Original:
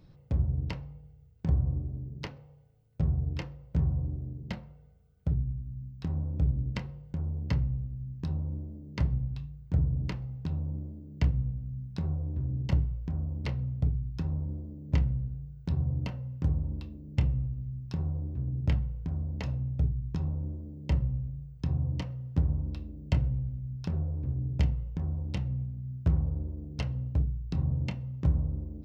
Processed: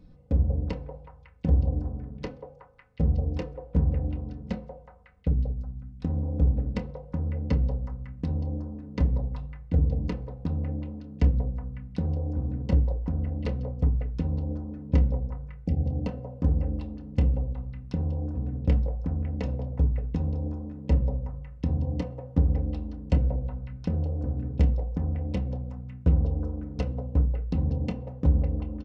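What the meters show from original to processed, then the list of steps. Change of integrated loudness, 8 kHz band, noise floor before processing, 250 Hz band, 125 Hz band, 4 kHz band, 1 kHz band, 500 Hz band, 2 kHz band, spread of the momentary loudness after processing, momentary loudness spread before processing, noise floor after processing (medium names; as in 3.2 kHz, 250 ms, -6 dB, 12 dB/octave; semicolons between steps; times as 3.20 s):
+3.5 dB, no reading, -55 dBFS, +5.5 dB, +2.5 dB, -3.0 dB, +5.0 dB, +10.0 dB, -1.0 dB, 10 LU, 9 LU, -50 dBFS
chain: resampled via 22.05 kHz; tilt shelf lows +4.5 dB, about 680 Hz; comb 4 ms, depth 63%; dynamic bell 450 Hz, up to +7 dB, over -48 dBFS, Q 1.2; spectral selection erased 15.64–15.85 s, 860–4400 Hz; repeats whose band climbs or falls 184 ms, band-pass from 640 Hz, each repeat 0.7 oct, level -2 dB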